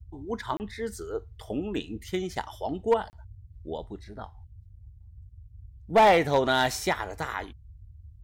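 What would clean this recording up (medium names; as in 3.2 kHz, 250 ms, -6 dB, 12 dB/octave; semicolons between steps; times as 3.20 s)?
clip repair -14 dBFS; interpolate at 0.57/3.10 s, 29 ms; noise print and reduce 23 dB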